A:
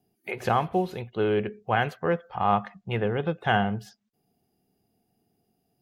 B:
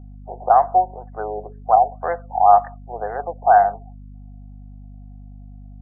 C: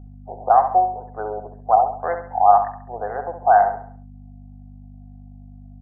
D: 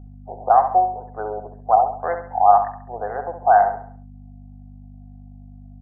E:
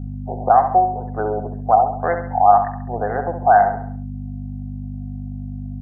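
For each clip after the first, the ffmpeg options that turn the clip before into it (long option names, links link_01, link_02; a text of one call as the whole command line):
ffmpeg -i in.wav -af "highpass=frequency=710:width_type=q:width=5.7,aeval=exprs='val(0)+0.0126*(sin(2*PI*50*n/s)+sin(2*PI*2*50*n/s)/2+sin(2*PI*3*50*n/s)/3+sin(2*PI*4*50*n/s)/4+sin(2*PI*5*50*n/s)/5)':channel_layout=same,afftfilt=real='re*lt(b*sr/1024,920*pow(2100/920,0.5+0.5*sin(2*PI*2*pts/sr)))':imag='im*lt(b*sr/1024,920*pow(2100/920,0.5+0.5*sin(2*PI*2*pts/sr)))':win_size=1024:overlap=0.75" out.wav
ffmpeg -i in.wav -af "aecho=1:1:68|136|204|272|340:0.376|0.154|0.0632|0.0259|0.0106,volume=-1dB" out.wav
ffmpeg -i in.wav -af anull out.wav
ffmpeg -i in.wav -filter_complex "[0:a]equalizer=frequency=125:width_type=o:width=1:gain=5,equalizer=frequency=250:width_type=o:width=1:gain=5,equalizer=frequency=500:width_type=o:width=1:gain=-4,equalizer=frequency=1000:width_type=o:width=1:gain=-6,asplit=2[link_01][link_02];[link_02]acompressor=threshold=-28dB:ratio=6,volume=-2dB[link_03];[link_01][link_03]amix=inputs=2:normalize=0,volume=4.5dB" out.wav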